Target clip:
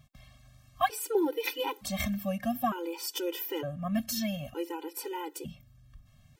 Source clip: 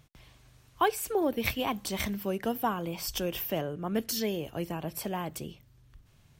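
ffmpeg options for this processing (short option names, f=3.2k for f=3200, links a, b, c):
-af "afftfilt=real='re*gt(sin(2*PI*0.55*pts/sr)*(1-2*mod(floor(b*sr/1024/260),2)),0)':imag='im*gt(sin(2*PI*0.55*pts/sr)*(1-2*mod(floor(b*sr/1024/260),2)),0)':win_size=1024:overlap=0.75,volume=2dB"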